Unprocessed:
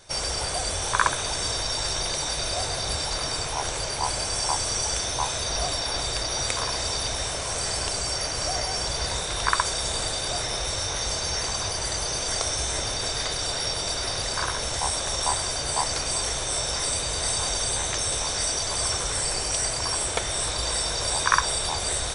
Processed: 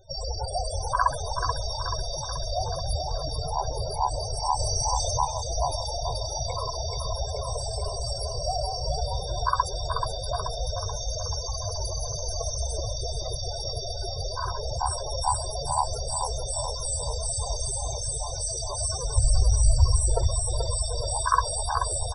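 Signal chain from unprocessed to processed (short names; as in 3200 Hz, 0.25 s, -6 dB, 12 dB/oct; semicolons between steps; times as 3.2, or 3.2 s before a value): 17.71–18.29 infinite clipping; 19.16–20 resonant low shelf 120 Hz +12.5 dB, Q 1.5; loudest bins only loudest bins 16; band shelf 2800 Hz -9.5 dB 2.3 oct; feedback echo 0.432 s, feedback 54%, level -6 dB; 4.59–5.25 fast leveller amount 50%; gain +4 dB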